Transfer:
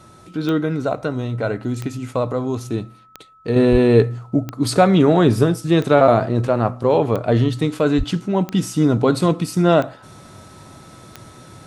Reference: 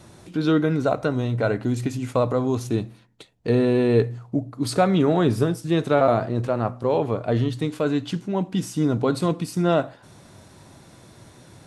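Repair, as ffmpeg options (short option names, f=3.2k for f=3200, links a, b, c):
-filter_complex "[0:a]adeclick=t=4,bandreject=f=1.3k:w=30,asplit=3[a][b][c];[a]afade=t=out:st=3.71:d=0.02[d];[b]highpass=f=140:w=0.5412,highpass=f=140:w=1.3066,afade=t=in:st=3.71:d=0.02,afade=t=out:st=3.83:d=0.02[e];[c]afade=t=in:st=3.83:d=0.02[f];[d][e][f]amix=inputs=3:normalize=0,asplit=3[g][h][i];[g]afade=t=out:st=7.97:d=0.02[j];[h]highpass=f=140:w=0.5412,highpass=f=140:w=1.3066,afade=t=in:st=7.97:d=0.02,afade=t=out:st=8.09:d=0.02[k];[i]afade=t=in:st=8.09:d=0.02[l];[j][k][l]amix=inputs=3:normalize=0,asetnsamples=n=441:p=0,asendcmd='3.56 volume volume -5.5dB',volume=0dB"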